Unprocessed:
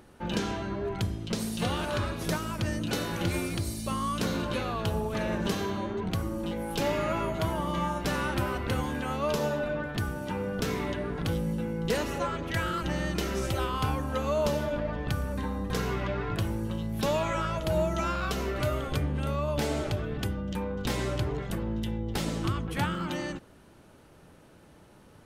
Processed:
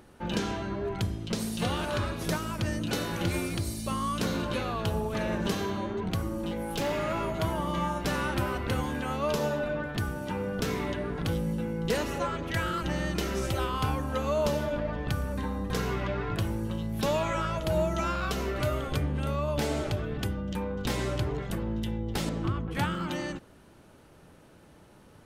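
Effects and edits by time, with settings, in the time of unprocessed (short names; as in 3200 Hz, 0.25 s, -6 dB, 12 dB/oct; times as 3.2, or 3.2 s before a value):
6.41–7.39 hard clip -25.5 dBFS
22.29–22.75 LPF 1600 Hz 6 dB/oct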